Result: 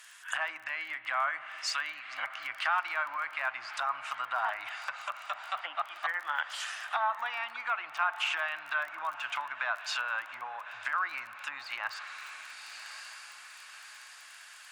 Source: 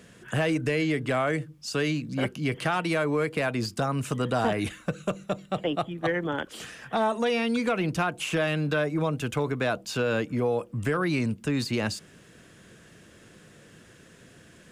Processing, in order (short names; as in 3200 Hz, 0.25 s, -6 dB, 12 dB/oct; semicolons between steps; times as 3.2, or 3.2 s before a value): high shelf 12000 Hz +7.5 dB; on a send: diffused feedback echo 1.131 s, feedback 51%, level -15 dB; on the sum: spring tank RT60 3.4 s, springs 57 ms, chirp 30 ms, DRR 15 dB; treble ducked by the level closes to 1500 Hz, closed at -23 dBFS; crackle 26/s -40 dBFS; inverse Chebyshev high-pass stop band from 480 Hz, stop band 40 dB; gain +3.5 dB